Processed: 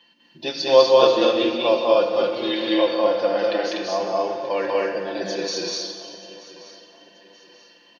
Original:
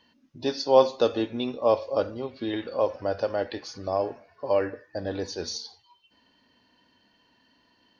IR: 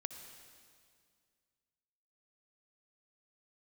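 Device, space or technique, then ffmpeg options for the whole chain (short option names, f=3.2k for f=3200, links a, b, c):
stadium PA: -filter_complex "[0:a]highpass=130,aecho=1:1:5.8:0.74,asettb=1/sr,asplit=3[a][b][c];[a]atrim=end=2.134[d];[b]atrim=start=2.13:end=2.77,asetpts=PTS-STARTPTS,afade=t=in:d=0.004:c=qsin,afade=t=out:st=0.636:d=0.004:c=qsin,bass=f=250:g=-3,treble=f=4k:g=12[e];[c]atrim=start=2.766[f];[d][e]acrossfade=d=0.004:c1=hsin:c2=qsin[g];[g][f]acrossfade=d=0.004:c1=qsin:c2=hsin,highpass=170,equalizer=f=2.7k:t=o:w=1.1:g=7.5,aecho=1:1:198.3|244.9:0.891|0.891[h];[1:a]atrim=start_sample=2205[i];[h][i]afir=irnorm=-1:irlink=0,aecho=1:1:932|1864|2796:0.126|0.0478|0.0182,volume=2.5dB"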